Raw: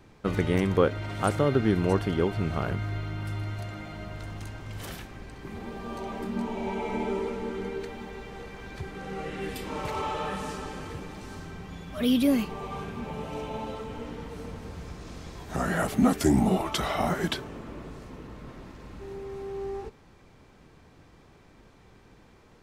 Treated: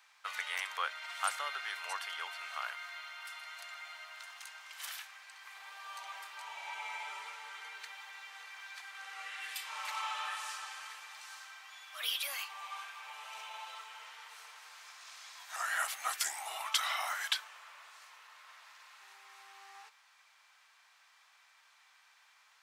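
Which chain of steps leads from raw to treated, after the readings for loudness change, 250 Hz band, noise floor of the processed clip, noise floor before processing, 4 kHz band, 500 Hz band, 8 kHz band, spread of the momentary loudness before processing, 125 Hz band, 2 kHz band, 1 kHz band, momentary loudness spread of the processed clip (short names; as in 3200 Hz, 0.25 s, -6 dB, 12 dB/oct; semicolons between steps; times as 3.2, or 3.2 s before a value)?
-10.0 dB, under -40 dB, -66 dBFS, -56 dBFS, +0.5 dB, -26.5 dB, +1.0 dB, 18 LU, under -40 dB, -1.0 dB, -6.5 dB, 19 LU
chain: Bessel high-pass 1500 Hz, order 6; gain +1 dB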